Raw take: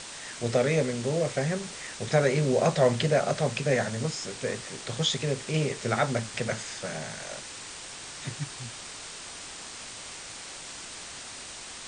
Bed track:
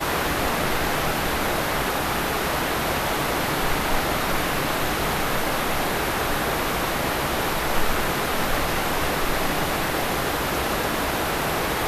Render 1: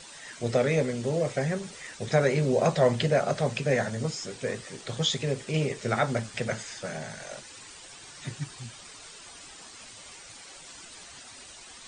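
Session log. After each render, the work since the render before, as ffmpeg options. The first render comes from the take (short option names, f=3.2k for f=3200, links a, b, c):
-af "afftdn=nr=10:nf=-42"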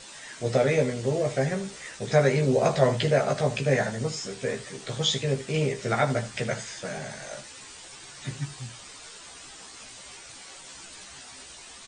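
-filter_complex "[0:a]asplit=2[a][b];[b]adelay=15,volume=-3.5dB[c];[a][c]amix=inputs=2:normalize=0,aecho=1:1:77:0.168"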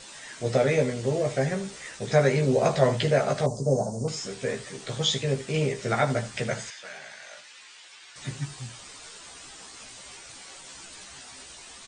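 -filter_complex "[0:a]asettb=1/sr,asplit=3[a][b][c];[a]atrim=end=3.464[d];[b]atrim=start=3.46:end=4.08,asetpts=PTS-STARTPTS,afade=t=in:d=0.004:c=qsin,afade=t=out:st=0.616:d=0.004:c=qsin,asuperstop=centerf=2300:order=8:qfactor=0.54[e];[c]atrim=start=4.076[f];[d][e]acrossfade=d=0.004:c1=hsin:c2=qsin[g];[g][f]acrossfade=d=0.004:c1=qsin:c2=hsin,asettb=1/sr,asplit=3[h][i][j];[h]atrim=end=6.704[k];[i]atrim=start=6.7:end=8.16,asetpts=PTS-STARTPTS,afade=t=in:d=0.004:c=qsin,afade=t=out:st=1.456:d=0.004:c=qsin,bandpass=f=2.5k:t=q:w=0.82[l];[j]atrim=start=8.156[m];[k][l]acrossfade=d=0.004:c1=hsin:c2=qsin[n];[n][m]acrossfade=d=0.004:c1=qsin:c2=hsin"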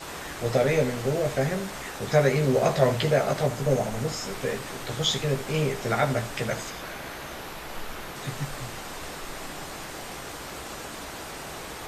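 -filter_complex "[1:a]volume=-14.5dB[a];[0:a][a]amix=inputs=2:normalize=0"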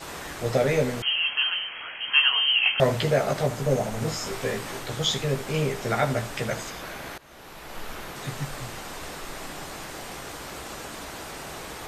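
-filter_complex "[0:a]asettb=1/sr,asplit=3[a][b][c];[a]atrim=end=1.024[d];[b]atrim=start=1.02:end=2.8,asetpts=PTS-STARTPTS,afade=t=in:d=0.004:c=qsin,afade=t=out:st=1.776:d=0.004:c=qsin,lowpass=f=2.8k:t=q:w=0.5098,lowpass=f=2.8k:t=q:w=0.6013,lowpass=f=2.8k:t=q:w=0.9,lowpass=f=2.8k:t=q:w=2.563,afreqshift=-3300[e];[c]atrim=start=2.796[f];[d][e]acrossfade=d=0.004:c1=hsin:c2=qsin[g];[g][f]acrossfade=d=0.004:c1=qsin:c2=hsin,asettb=1/sr,asplit=3[h][i][j];[h]atrim=end=4.004[k];[i]atrim=start=4:end=4.8,asetpts=PTS-STARTPTS,afade=t=in:d=0.004:c=qsin,afade=t=out:st=0.796:d=0.004:c=qsin,asplit=2[l][m];[m]adelay=18,volume=-3.5dB[n];[l][n]amix=inputs=2:normalize=0,atrim=end_sample=35280[o];[j]atrim=start=4.796[p];[k][o]acrossfade=d=0.004:c1=hsin:c2=qsin[q];[q][p]acrossfade=d=0.004:c1=qsin:c2=hsin,asplit=2[r][s];[r]atrim=end=7.18,asetpts=PTS-STARTPTS,afade=t=out:st=7.176:d=0.004:c=hsin:silence=0.105925[t];[s]atrim=start=7.18,asetpts=PTS-STARTPTS,afade=t=in:d=0.71:silence=0.105925[u];[t][u]concat=n=2:v=0:a=1"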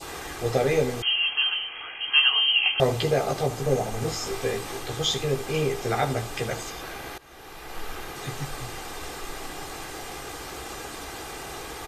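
-af "aecho=1:1:2.5:0.44,adynamicequalizer=threshold=0.00794:dfrequency=1700:dqfactor=2:tfrequency=1700:tqfactor=2:attack=5:release=100:ratio=0.375:range=3.5:mode=cutabove:tftype=bell"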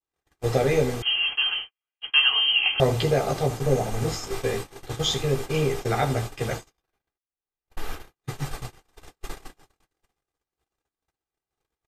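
-af "lowshelf=f=180:g=5.5,agate=range=-58dB:threshold=-29dB:ratio=16:detection=peak"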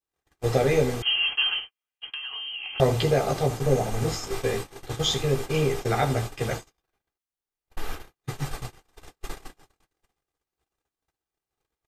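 -filter_complex "[0:a]asettb=1/sr,asplit=3[a][b][c];[a]atrim=end=1.594[d];[b]atrim=start=1.59:end=2.8,asetpts=PTS-STARTPTS,afade=t=in:d=0.004:c=qsin,afade=t=out:st=1.206:d=0.004:c=qsin,acompressor=threshold=-31dB:ratio=16:attack=3.2:release=140:knee=1:detection=peak[e];[c]atrim=start=2.796[f];[d][e]acrossfade=d=0.004:c1=hsin:c2=qsin[g];[g][f]acrossfade=d=0.004:c1=qsin:c2=hsin"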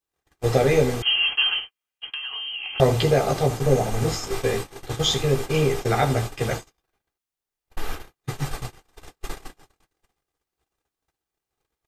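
-af "volume=3dB"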